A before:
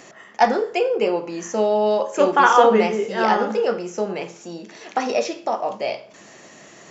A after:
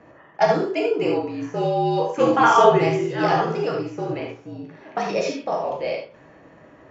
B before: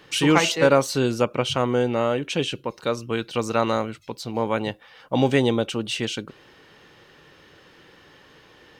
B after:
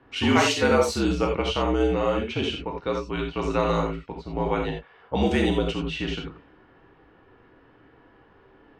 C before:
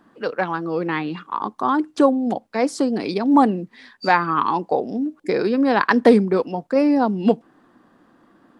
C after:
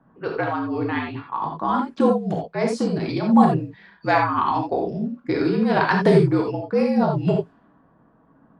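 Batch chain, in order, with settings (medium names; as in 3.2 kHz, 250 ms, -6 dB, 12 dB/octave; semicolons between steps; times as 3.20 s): level-controlled noise filter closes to 1.3 kHz, open at -14.5 dBFS; gated-style reverb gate 110 ms flat, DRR 0 dB; frequency shift -55 Hz; trim -4 dB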